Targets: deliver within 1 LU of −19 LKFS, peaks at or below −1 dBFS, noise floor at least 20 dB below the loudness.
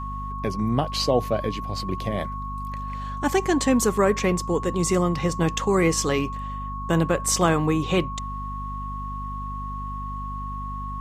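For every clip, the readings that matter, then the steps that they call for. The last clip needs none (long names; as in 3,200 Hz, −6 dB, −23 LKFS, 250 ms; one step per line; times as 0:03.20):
mains hum 50 Hz; hum harmonics up to 250 Hz; level of the hum −31 dBFS; interfering tone 1,100 Hz; level of the tone −32 dBFS; integrated loudness −25.0 LKFS; sample peak −6.5 dBFS; target loudness −19.0 LKFS
→ hum removal 50 Hz, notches 5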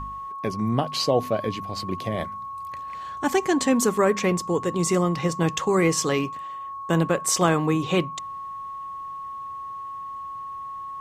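mains hum none found; interfering tone 1,100 Hz; level of the tone −32 dBFS
→ notch filter 1,100 Hz, Q 30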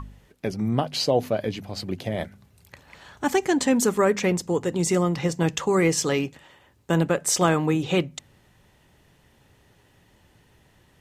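interfering tone none found; integrated loudness −24.0 LKFS; sample peak −6.5 dBFS; target loudness −19.0 LKFS
→ level +5 dB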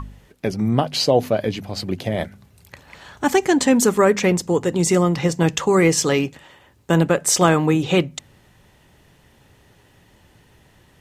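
integrated loudness −19.0 LKFS; sample peak −1.5 dBFS; background noise floor −55 dBFS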